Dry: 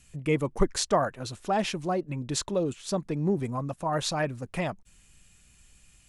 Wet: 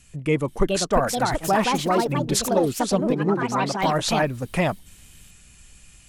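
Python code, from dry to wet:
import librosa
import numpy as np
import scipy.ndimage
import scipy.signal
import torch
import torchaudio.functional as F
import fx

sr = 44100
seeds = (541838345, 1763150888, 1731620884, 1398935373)

y = fx.rider(x, sr, range_db=10, speed_s=0.5)
y = fx.echo_pitch(y, sr, ms=480, semitones=4, count=2, db_per_echo=-3.0)
y = fx.bandpass_edges(y, sr, low_hz=170.0, high_hz=5800.0, at=(3.12, 3.81), fade=0.02)
y = y * librosa.db_to_amplitude(5.0)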